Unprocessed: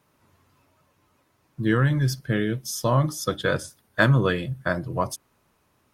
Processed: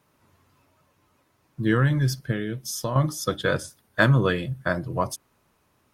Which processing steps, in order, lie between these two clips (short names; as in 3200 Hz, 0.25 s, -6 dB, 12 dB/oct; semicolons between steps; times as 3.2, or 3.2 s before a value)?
2.31–2.96 compressor 3:1, threshold -26 dBFS, peak gain reduction 8 dB